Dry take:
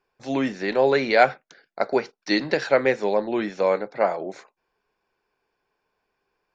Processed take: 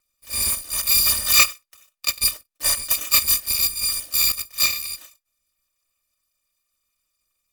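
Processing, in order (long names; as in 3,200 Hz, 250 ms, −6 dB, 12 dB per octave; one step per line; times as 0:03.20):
samples in bit-reversed order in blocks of 256 samples
speed change −13%
level +1 dB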